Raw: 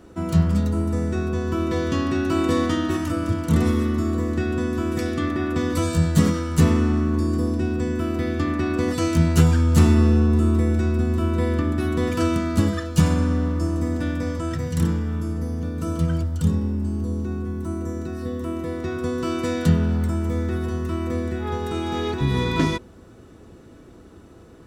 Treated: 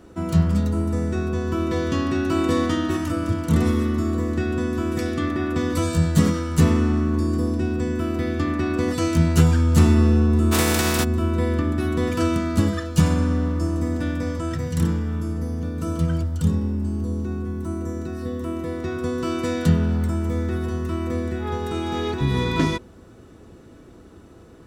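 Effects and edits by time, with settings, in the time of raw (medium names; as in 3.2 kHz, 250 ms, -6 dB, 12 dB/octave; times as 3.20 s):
10.51–11.03 s: spectral contrast reduction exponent 0.42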